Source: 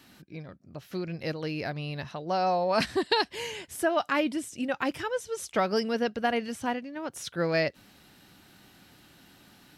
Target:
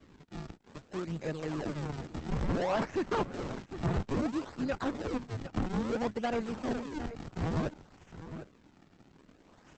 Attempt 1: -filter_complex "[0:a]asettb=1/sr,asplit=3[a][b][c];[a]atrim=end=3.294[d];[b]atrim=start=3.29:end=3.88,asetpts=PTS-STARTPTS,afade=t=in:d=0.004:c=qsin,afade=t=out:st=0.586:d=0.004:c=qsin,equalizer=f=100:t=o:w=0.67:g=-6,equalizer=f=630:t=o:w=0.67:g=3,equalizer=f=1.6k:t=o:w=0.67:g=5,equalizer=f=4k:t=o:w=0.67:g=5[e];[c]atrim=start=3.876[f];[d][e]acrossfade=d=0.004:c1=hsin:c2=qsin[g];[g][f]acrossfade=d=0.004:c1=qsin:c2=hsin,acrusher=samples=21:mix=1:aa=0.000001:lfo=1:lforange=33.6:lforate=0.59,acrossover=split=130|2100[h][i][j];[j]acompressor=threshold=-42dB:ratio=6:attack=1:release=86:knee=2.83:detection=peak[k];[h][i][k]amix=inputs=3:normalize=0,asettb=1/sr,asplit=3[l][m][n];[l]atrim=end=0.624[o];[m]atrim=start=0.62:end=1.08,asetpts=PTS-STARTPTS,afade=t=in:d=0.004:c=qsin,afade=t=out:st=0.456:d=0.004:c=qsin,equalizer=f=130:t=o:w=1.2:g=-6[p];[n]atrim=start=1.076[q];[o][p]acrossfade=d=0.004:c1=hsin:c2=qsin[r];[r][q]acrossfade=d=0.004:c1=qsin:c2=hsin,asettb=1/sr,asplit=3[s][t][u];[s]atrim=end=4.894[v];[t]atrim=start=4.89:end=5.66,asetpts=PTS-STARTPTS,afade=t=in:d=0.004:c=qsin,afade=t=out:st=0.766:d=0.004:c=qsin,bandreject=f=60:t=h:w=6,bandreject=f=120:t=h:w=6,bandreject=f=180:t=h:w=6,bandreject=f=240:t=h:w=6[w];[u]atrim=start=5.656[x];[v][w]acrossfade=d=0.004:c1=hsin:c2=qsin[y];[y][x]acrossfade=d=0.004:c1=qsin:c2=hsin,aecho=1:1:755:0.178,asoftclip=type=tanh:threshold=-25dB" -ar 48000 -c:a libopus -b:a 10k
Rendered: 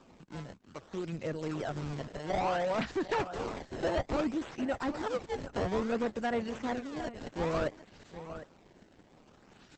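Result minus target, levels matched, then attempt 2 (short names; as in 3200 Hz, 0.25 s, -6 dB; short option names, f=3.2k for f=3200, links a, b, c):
decimation with a swept rate: distortion -7 dB
-filter_complex "[0:a]asettb=1/sr,asplit=3[a][b][c];[a]atrim=end=3.294[d];[b]atrim=start=3.29:end=3.88,asetpts=PTS-STARTPTS,afade=t=in:d=0.004:c=qsin,afade=t=out:st=0.586:d=0.004:c=qsin,equalizer=f=100:t=o:w=0.67:g=-6,equalizer=f=630:t=o:w=0.67:g=3,equalizer=f=1.6k:t=o:w=0.67:g=5,equalizer=f=4k:t=o:w=0.67:g=5[e];[c]atrim=start=3.876[f];[d][e]acrossfade=d=0.004:c1=hsin:c2=qsin[g];[g][f]acrossfade=d=0.004:c1=qsin:c2=hsin,acrusher=samples=48:mix=1:aa=0.000001:lfo=1:lforange=76.8:lforate=0.59,acrossover=split=130|2100[h][i][j];[j]acompressor=threshold=-42dB:ratio=6:attack=1:release=86:knee=2.83:detection=peak[k];[h][i][k]amix=inputs=3:normalize=0,asettb=1/sr,asplit=3[l][m][n];[l]atrim=end=0.624[o];[m]atrim=start=0.62:end=1.08,asetpts=PTS-STARTPTS,afade=t=in:d=0.004:c=qsin,afade=t=out:st=0.456:d=0.004:c=qsin,equalizer=f=130:t=o:w=1.2:g=-6[p];[n]atrim=start=1.076[q];[o][p]acrossfade=d=0.004:c1=hsin:c2=qsin[r];[r][q]acrossfade=d=0.004:c1=qsin:c2=hsin,asettb=1/sr,asplit=3[s][t][u];[s]atrim=end=4.894[v];[t]atrim=start=4.89:end=5.66,asetpts=PTS-STARTPTS,afade=t=in:d=0.004:c=qsin,afade=t=out:st=0.766:d=0.004:c=qsin,bandreject=f=60:t=h:w=6,bandreject=f=120:t=h:w=6,bandreject=f=180:t=h:w=6,bandreject=f=240:t=h:w=6[w];[u]atrim=start=5.656[x];[v][w]acrossfade=d=0.004:c1=hsin:c2=qsin[y];[y][x]acrossfade=d=0.004:c1=qsin:c2=hsin,aecho=1:1:755:0.178,asoftclip=type=tanh:threshold=-25dB" -ar 48000 -c:a libopus -b:a 10k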